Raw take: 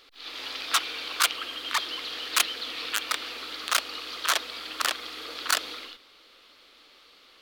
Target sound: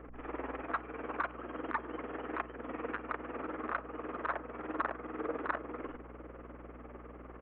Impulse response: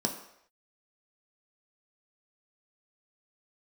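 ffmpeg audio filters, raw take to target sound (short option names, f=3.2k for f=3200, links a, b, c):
-filter_complex "[0:a]tremolo=f=20:d=0.75,acompressor=threshold=-46dB:ratio=2.5,lowpass=2.3k,aresample=8000,adynamicsmooth=sensitivity=4:basefreq=1.2k,aresample=44100,aeval=exprs='val(0)+0.000447*(sin(2*PI*60*n/s)+sin(2*PI*2*60*n/s)/2+sin(2*PI*3*60*n/s)/3+sin(2*PI*4*60*n/s)/4+sin(2*PI*5*60*n/s)/5)':c=same,asplit=2[a][b];[1:a]atrim=start_sample=2205,asetrate=48510,aresample=44100[c];[b][c]afir=irnorm=-1:irlink=0,volume=-17.5dB[d];[a][d]amix=inputs=2:normalize=0,volume=15.5dB"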